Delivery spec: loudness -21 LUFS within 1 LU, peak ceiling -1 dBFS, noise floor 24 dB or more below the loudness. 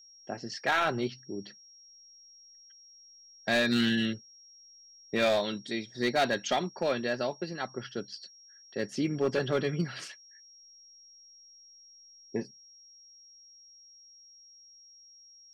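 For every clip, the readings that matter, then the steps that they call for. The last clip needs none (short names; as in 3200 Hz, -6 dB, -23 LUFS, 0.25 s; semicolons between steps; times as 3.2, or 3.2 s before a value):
clipped 0.4%; flat tops at -20.5 dBFS; steady tone 5600 Hz; tone level -53 dBFS; loudness -31.0 LUFS; peak -20.5 dBFS; loudness target -21.0 LUFS
-> clip repair -20.5 dBFS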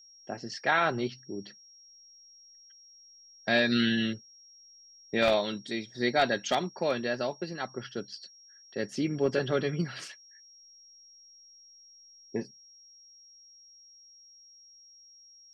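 clipped 0.0%; steady tone 5600 Hz; tone level -53 dBFS
-> notch 5600 Hz, Q 30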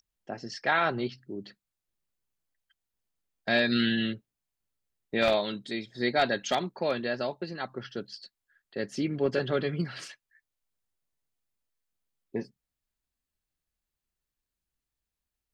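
steady tone none; loudness -29.5 LUFS; peak -11.5 dBFS; loudness target -21.0 LUFS
-> gain +8.5 dB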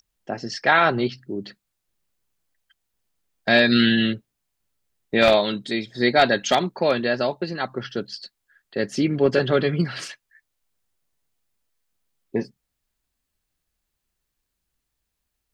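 loudness -21.0 LUFS; peak -3.0 dBFS; noise floor -80 dBFS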